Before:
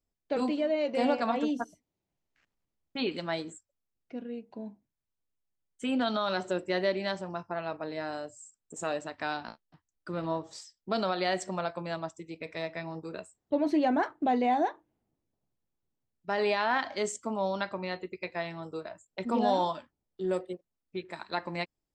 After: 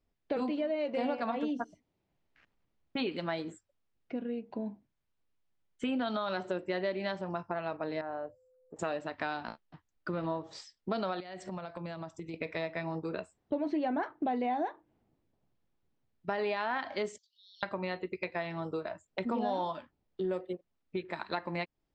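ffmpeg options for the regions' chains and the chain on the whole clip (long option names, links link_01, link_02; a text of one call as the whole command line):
ffmpeg -i in.wav -filter_complex "[0:a]asettb=1/sr,asplit=3[link_01][link_02][link_03];[link_01]atrim=end=8.014[link_04];[link_02]atrim=start=8.01:end=8.79,asetpts=PTS-STARTPTS,afade=type=in:duration=0.004:curve=qsin,afade=type=out:start_time=0.776:duration=0.004:curve=qsin,lowpass=1000,equalizer=frequency=200:width=0.5:gain=-11,aeval=exprs='val(0)+0.000282*sin(2*PI*510*n/s)':channel_layout=same[link_05];[link_03]atrim=start=8.786[link_06];[link_04][link_05]acrossfade=duration=0.004:curve1=hsin:curve2=qsin[link_07];[link_07][link_06]acrossfade=duration=0.004:curve1=qsin:curve2=hsin,asettb=1/sr,asplit=3[link_08][link_09][link_10];[link_08]atrim=end=11.204[link_11];[link_09]atrim=start=11.2:end=12.34,asetpts=PTS-STARTPTS,afade=type=in:duration=0.004:curve=qsin,afade=type=out:start_time=1.136:duration=0.004:curve=qsin,acompressor=threshold=-45dB:ratio=6:attack=3.2:release=140:knee=1:detection=peak,bass=frequency=250:gain=4,treble=frequency=4000:gain=4[link_12];[link_10]atrim=start=12.336[link_13];[link_11][link_12]acrossfade=duration=0.004:curve1=hsin:curve2=qsin[link_14];[link_14][link_13]acrossfade=duration=0.004:curve1=qsin:curve2=hsin,asettb=1/sr,asplit=3[link_15][link_16][link_17];[link_15]atrim=end=17.184[link_18];[link_16]atrim=start=17.18:end=17.63,asetpts=PTS-STARTPTS,afade=type=in:duration=0.004:curve=qsin,afade=type=out:start_time=0.446:duration=0.004:curve=qsin,acompressor=threshold=-34dB:ratio=10:attack=3.2:release=140:knee=1:detection=peak,asuperpass=centerf=4900:order=12:qfactor=1.4[link_19];[link_17]atrim=start=17.626[link_20];[link_18][link_19]acrossfade=duration=0.004:curve1=hsin:curve2=qsin[link_21];[link_21][link_20]acrossfade=duration=0.004:curve1=qsin:curve2=hsin,lowpass=3700,acompressor=threshold=-40dB:ratio=3,volume=6.5dB" out.wav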